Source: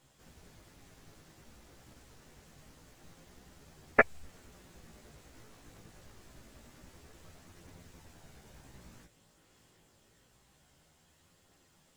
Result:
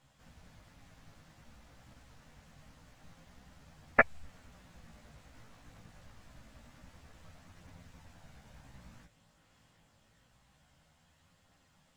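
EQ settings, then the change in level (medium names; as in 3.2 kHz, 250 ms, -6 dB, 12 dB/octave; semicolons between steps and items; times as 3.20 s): peaking EQ 380 Hz -14 dB 0.48 oct; treble shelf 5.6 kHz -10.5 dB; +1.0 dB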